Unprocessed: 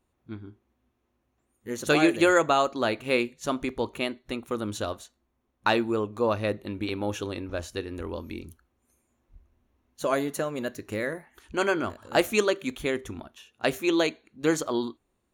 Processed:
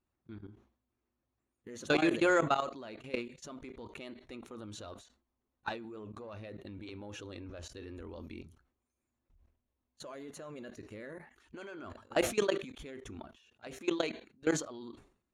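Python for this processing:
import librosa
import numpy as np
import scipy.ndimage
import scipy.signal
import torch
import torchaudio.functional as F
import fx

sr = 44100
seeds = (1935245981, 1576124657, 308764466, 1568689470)

p1 = fx.spec_quant(x, sr, step_db=15)
p2 = 10.0 ** (-25.5 / 20.0) * np.tanh(p1 / 10.0 ** (-25.5 / 20.0))
p3 = p1 + F.gain(torch.from_numpy(p2), -8.0).numpy()
p4 = fx.level_steps(p3, sr, step_db=20)
p5 = scipy.signal.sosfilt(scipy.signal.butter(2, 7300.0, 'lowpass', fs=sr, output='sos'), p4)
p6 = fx.sustainer(p5, sr, db_per_s=120.0)
y = F.gain(torch.from_numpy(p6), -5.5).numpy()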